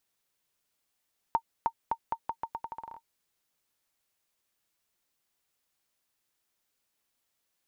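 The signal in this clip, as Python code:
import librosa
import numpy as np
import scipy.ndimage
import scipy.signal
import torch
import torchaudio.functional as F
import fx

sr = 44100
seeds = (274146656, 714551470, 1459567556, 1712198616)

y = fx.bouncing_ball(sr, first_gap_s=0.31, ratio=0.82, hz=915.0, decay_ms=69.0, level_db=-14.5)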